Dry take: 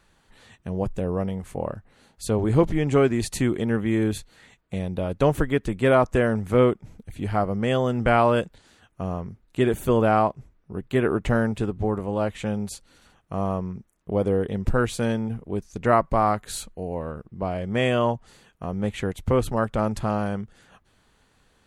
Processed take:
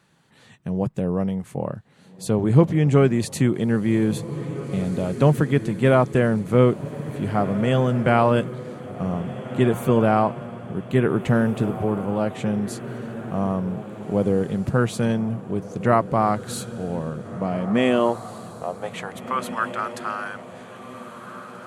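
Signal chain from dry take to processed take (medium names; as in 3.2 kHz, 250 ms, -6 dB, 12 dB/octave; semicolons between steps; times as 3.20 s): high-pass sweep 140 Hz -> 1.4 kHz, 17.34–19.51 s; echo that smears into a reverb 1795 ms, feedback 45%, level -12.5 dB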